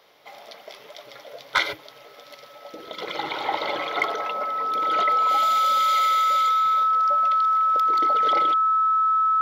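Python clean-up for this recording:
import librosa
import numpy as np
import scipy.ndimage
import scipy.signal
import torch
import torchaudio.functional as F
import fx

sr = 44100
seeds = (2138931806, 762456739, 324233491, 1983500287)

y = fx.fix_declip(x, sr, threshold_db=-11.0)
y = fx.notch(y, sr, hz=1300.0, q=30.0)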